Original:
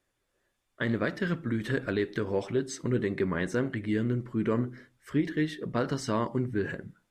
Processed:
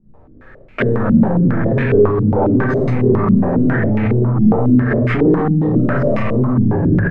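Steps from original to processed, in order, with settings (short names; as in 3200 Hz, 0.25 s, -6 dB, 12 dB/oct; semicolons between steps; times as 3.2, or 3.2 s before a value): CVSD 64 kbps; low shelf 490 Hz +9.5 dB; sample leveller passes 3; doubler 39 ms -6 dB; tapped delay 52/108/338 ms -5.5/-3.5/-20 dB; shoebox room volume 82 m³, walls mixed, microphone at 1.7 m; maximiser +28.5 dB; stepped low-pass 7.3 Hz 210–2300 Hz; gain -9.5 dB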